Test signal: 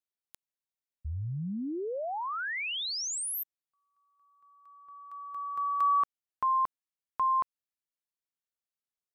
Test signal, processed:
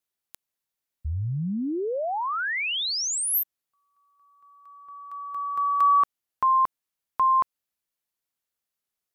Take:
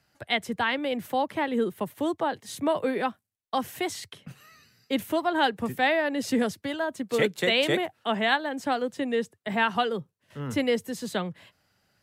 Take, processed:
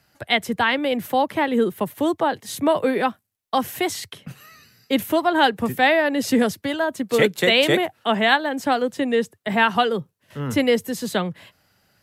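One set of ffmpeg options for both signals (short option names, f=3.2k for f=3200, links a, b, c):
-af "equalizer=f=12k:w=3.7:g=6,volume=6.5dB"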